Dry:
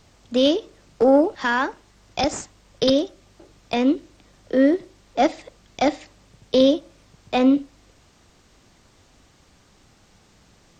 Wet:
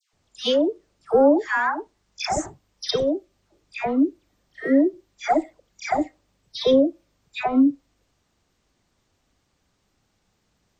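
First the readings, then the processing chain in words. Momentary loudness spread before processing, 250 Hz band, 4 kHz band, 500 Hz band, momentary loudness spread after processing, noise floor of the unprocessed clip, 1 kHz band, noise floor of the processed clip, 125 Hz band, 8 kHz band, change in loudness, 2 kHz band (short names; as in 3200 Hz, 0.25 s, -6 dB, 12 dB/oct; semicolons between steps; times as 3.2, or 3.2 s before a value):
10 LU, -1.5 dB, -2.5 dB, -1.5 dB, 14 LU, -57 dBFS, 0.0 dB, -71 dBFS, -1.0 dB, -0.5 dB, -1.5 dB, 0.0 dB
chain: spectral noise reduction 14 dB; dispersion lows, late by 0.133 s, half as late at 1400 Hz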